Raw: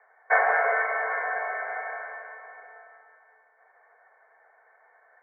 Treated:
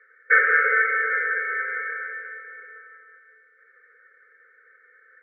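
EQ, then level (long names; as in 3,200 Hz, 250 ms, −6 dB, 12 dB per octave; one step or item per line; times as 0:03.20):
linear-phase brick-wall band-stop 550–1,200 Hz
high-frequency loss of the air 250 metres
tilt shelving filter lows −3.5 dB
+7.5 dB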